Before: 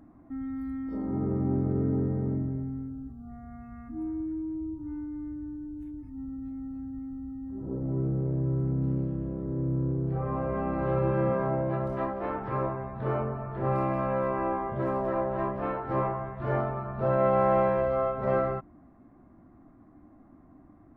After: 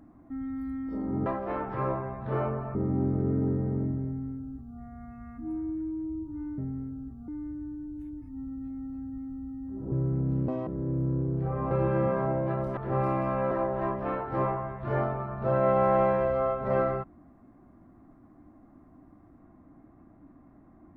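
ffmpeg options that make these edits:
-filter_complex "[0:a]asplit=11[s0][s1][s2][s3][s4][s5][s6][s7][s8][s9][s10];[s0]atrim=end=1.262[s11];[s1]atrim=start=11.998:end=13.492[s12];[s2]atrim=start=1.258:end=5.092[s13];[s3]atrim=start=2.568:end=3.272[s14];[s4]atrim=start=5.088:end=7.732[s15];[s5]atrim=start=8.438:end=9.004[s16];[s6]atrim=start=9:end=9.37,asetpts=PTS-STARTPTS,asetrate=85554,aresample=44100[s17];[s7]atrim=start=9.366:end=10.412[s18];[s8]atrim=start=10.938:end=12.002[s19];[s9]atrim=start=13.488:end=14.232[s20];[s10]atrim=start=15.078[s21];[s11][s12]acrossfade=d=0.004:c1=hsin:c2=hsin[s22];[s22][s13]acrossfade=d=0.004:c1=hsin:c2=hsin[s23];[s23][s14]acrossfade=d=0.004:c1=hsin:c2=hsin[s24];[s24][s15]acrossfade=d=0.004:c1=hsin:c2=hsin[s25];[s25][s16]acrossfade=d=0.004:c1=hsin:c2=hsin[s26];[s26][s17]acrossfade=d=0.004:c1=hsin:c2=hsin[s27];[s27][s18]acrossfade=d=0.004:c1=hsin:c2=hsin[s28];[s28][s19]acrossfade=d=0.004:c1=hsin:c2=hsin[s29];[s29][s20]acrossfade=d=0.004:c1=hsin:c2=hsin[s30];[s30][s21]acrossfade=d=0.004:c1=hsin:c2=hsin"

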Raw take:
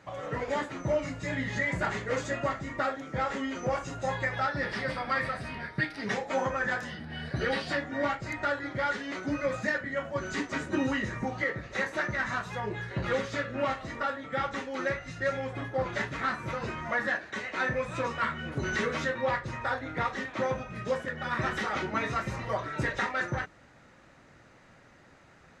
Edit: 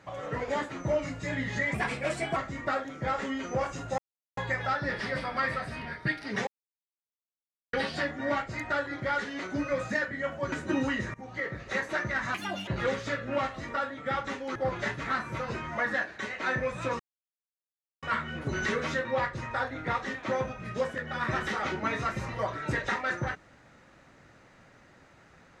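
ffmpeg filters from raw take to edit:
-filter_complex "[0:a]asplit=12[s0][s1][s2][s3][s4][s5][s6][s7][s8][s9][s10][s11];[s0]atrim=end=1.744[s12];[s1]atrim=start=1.74:end=2.48,asetpts=PTS-STARTPTS,asetrate=52479,aresample=44100[s13];[s2]atrim=start=2.476:end=4.1,asetpts=PTS-STARTPTS,afade=t=out:st=1.62:d=0.004:c=hsin,apad=pad_dur=0.39[s14];[s3]atrim=start=4.1:end=6.2,asetpts=PTS-STARTPTS,afade=t=in:d=0.004:c=hsin,afade=t=out:st=2.096:d=0.004:c=hsin[s15];[s4]atrim=start=6.2:end=7.46,asetpts=PTS-STARTPTS,volume=0[s16];[s5]atrim=start=7.46:end=10.252,asetpts=PTS-STARTPTS,afade=t=in:d=0.004:c=hsin[s17];[s6]atrim=start=10.558:end=11.18,asetpts=PTS-STARTPTS,afade=t=out:st=0.618:d=0.004:c=hsin:silence=0.0891251[s18];[s7]atrim=start=11.18:end=12.384,asetpts=PTS-STARTPTS,afade=t=in:d=0.43:silence=0.0891251[s19];[s8]atrim=start=12.38:end=12.94,asetpts=PTS-STARTPTS,asetrate=74088,aresample=44100[s20];[s9]atrim=start=12.936:end=14.822[s21];[s10]atrim=start=15.688:end=18.13,asetpts=PTS-STARTPTS,afade=t=out:st=2.438:d=0.004:c=hsin,apad=pad_dur=1.03[s22];[s11]atrim=start=18.13,asetpts=PTS-STARTPTS,afade=t=in:d=0.004:c=hsin[s23];[s12][s13]acrossfade=d=0.004:c1=hsin:c2=hsin[s24];[s14][s15][s16][s17]concat=n=4:v=0:a=1[s25];[s24][s25]acrossfade=d=0.004:c1=hsin:c2=hsin[s26];[s18][s19]concat=n=2:v=0:a=1[s27];[s26][s27]acrossfade=d=0.004:c1=hsin:c2=hsin[s28];[s28][s20]acrossfade=d=0.004:c1=hsin:c2=hsin[s29];[s29][s21]acrossfade=d=0.004:c1=hsin:c2=hsin[s30];[s22][s23]concat=n=2:v=0:a=1[s31];[s30][s31]acrossfade=d=0.004:c1=hsin:c2=hsin"

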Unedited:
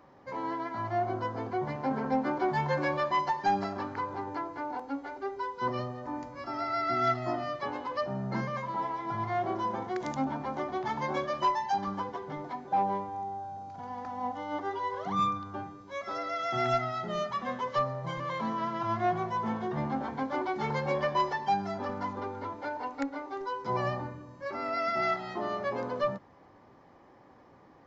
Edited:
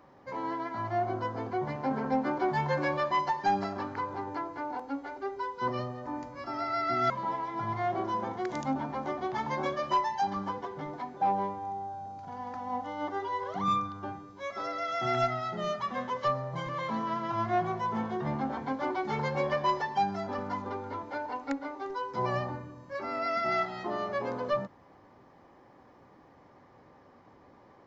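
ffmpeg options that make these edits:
-filter_complex "[0:a]asplit=2[s0][s1];[s0]atrim=end=7.102[s2];[s1]atrim=start=8.608[s3];[s2][s3]acrossfade=d=0.004:c1=hsin:c2=hsin"

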